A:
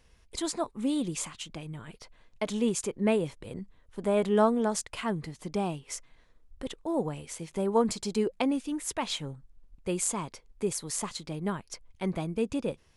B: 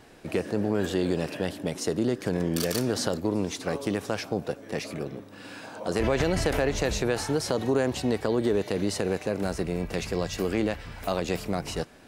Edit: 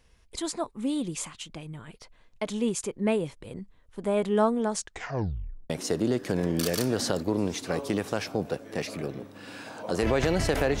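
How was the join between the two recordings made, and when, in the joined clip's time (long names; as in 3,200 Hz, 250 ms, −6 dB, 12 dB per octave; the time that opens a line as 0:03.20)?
A
0:04.74: tape stop 0.96 s
0:05.70: continue with B from 0:01.67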